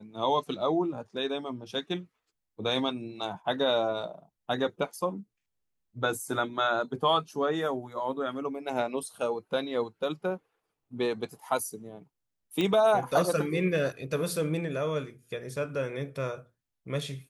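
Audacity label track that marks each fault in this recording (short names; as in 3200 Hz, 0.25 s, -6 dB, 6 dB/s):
12.610000	12.610000	pop -16 dBFS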